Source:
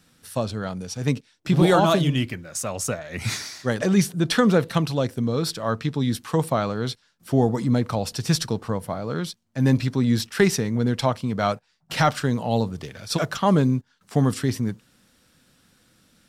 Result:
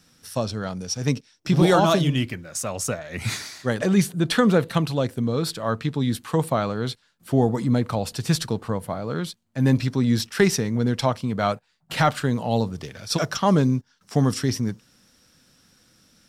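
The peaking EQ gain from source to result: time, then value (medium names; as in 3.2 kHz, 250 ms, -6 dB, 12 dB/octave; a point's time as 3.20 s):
peaking EQ 5.5 kHz 0.27 oct
+9 dB
from 2.03 s +1 dB
from 3.19 s -5 dB
from 9.77 s +2.5 dB
from 11.26 s -6 dB
from 12.36 s +4 dB
from 13.18 s +10 dB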